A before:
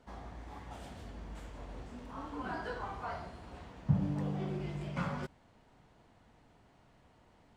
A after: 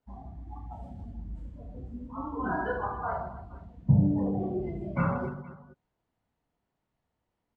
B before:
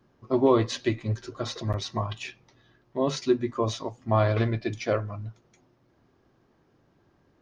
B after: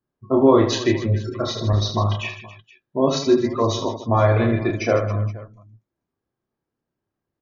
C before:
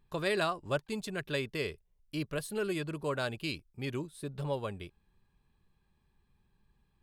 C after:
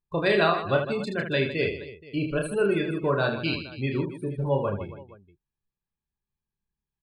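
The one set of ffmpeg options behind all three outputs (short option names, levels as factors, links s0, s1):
-filter_complex "[0:a]afftdn=nr=28:nf=-39,asplit=2[s0][s1];[s1]alimiter=limit=0.106:level=0:latency=1:release=146,volume=1[s2];[s0][s2]amix=inputs=2:normalize=0,aecho=1:1:30|78|154.8|277.7|474.3:0.631|0.398|0.251|0.158|0.1,volume=1.19"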